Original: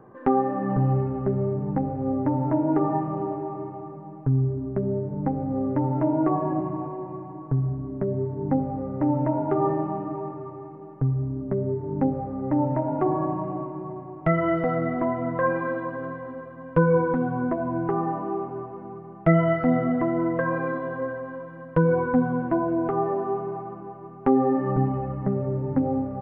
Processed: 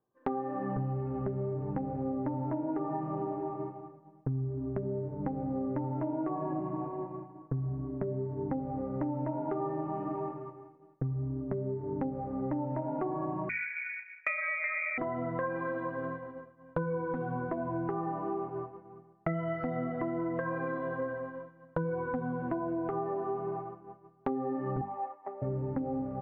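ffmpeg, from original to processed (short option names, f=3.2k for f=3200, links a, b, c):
-filter_complex "[0:a]asettb=1/sr,asplit=3[a][b][c];[a]atrim=end=9.934[d];[b]atrim=start=9.93:end=11.07,asetpts=PTS-STARTPTS,afade=t=in:d=0.004:c=qsin,afade=t=out:st=1.136:d=0.004:c=qsin,highshelf=f=2.2k:g=6.5[e];[c]atrim=start=11.066[f];[d][e]acrossfade=d=0.004:c1=hsin:c2=qsin[g];[g][f]acrossfade=d=0.004:c1=qsin:c2=hsin,asettb=1/sr,asplit=3[h][i][j];[h]atrim=end=13.494[k];[i]atrim=start=13.49:end=14.98,asetpts=PTS-STARTPTS,afade=t=in:d=0.004:c=qsin,afade=t=out:st=1.486:d=0.004:c=qsin,lowpass=f=2.2k:t=q:w=0.5098,lowpass=f=2.2k:t=q:w=0.6013,lowpass=f=2.2k:t=q:w=0.9,lowpass=f=2.2k:t=q:w=2.563,afreqshift=-2600[l];[j]atrim=start=14.976[m];[k][l]acrossfade=d=0.004:c1=hsin:c2=qsin[n];[n][m]acrossfade=d=0.004:c1=qsin:c2=hsin,asettb=1/sr,asplit=3[o][p][q];[o]atrim=end=24.814[r];[p]atrim=start=24.81:end=25.42,asetpts=PTS-STARTPTS,afade=t=in:d=0.004:c=qsin,afade=t=out:st=0.606:d=0.004:c=qsin,highpass=f=470:w=0.5412,highpass=f=470:w=1.3066,equalizer=f=490:t=q:w=4:g=-10,equalizer=f=850:t=q:w=4:g=7,equalizer=f=1.5k:t=q:w=4:g=-7,lowpass=f=2.3k:w=0.5412,lowpass=f=2.3k:w=1.3066[s];[q]atrim=start=25.416[t];[r][s]acrossfade=d=0.004:c1=hsin:c2=qsin[u];[u][t]acrossfade=d=0.004:c1=qsin:c2=hsin,bandreject=f=50:t=h:w=6,bandreject=f=100:t=h:w=6,bandreject=f=150:t=h:w=6,bandreject=f=200:t=h:w=6,bandreject=f=250:t=h:w=6,agate=range=-33dB:threshold=-29dB:ratio=3:detection=peak,acompressor=threshold=-31dB:ratio=6"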